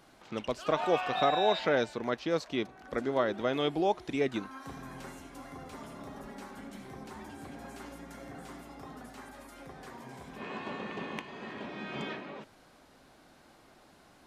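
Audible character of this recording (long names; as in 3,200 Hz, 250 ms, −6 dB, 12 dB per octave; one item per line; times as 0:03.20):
background noise floor −60 dBFS
spectral slope −3.0 dB per octave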